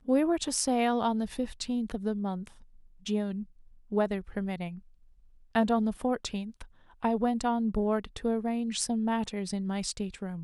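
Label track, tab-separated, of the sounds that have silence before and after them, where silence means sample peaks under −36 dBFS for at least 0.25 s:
3.060000	3.430000	sound
3.920000	4.740000	sound
5.550000	6.620000	sound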